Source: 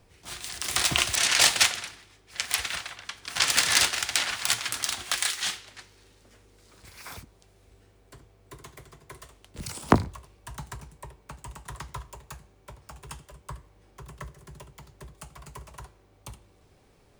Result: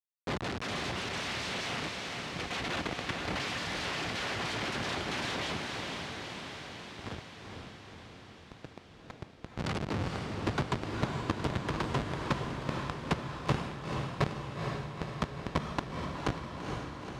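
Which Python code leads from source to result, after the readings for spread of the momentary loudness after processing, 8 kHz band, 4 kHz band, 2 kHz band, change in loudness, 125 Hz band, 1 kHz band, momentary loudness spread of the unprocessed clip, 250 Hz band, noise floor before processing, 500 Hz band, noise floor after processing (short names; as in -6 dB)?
13 LU, -19.0 dB, -10.5 dB, -6.0 dB, -11.0 dB, +3.5 dB, -1.0 dB, 23 LU, +1.0 dB, -60 dBFS, +2.0 dB, -54 dBFS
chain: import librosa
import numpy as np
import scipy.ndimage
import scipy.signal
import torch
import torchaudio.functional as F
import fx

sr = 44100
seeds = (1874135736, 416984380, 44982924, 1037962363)

y = fx.dynamic_eq(x, sr, hz=1200.0, q=0.82, threshold_db=-37.0, ratio=4.0, max_db=-4)
y = fx.schmitt(y, sr, flips_db=-33.5)
y = fx.rider(y, sr, range_db=10, speed_s=0.5)
y = fx.bandpass_edges(y, sr, low_hz=100.0, high_hz=4500.0)
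y = fx.echo_diffused(y, sr, ms=470, feedback_pct=67, wet_db=-3)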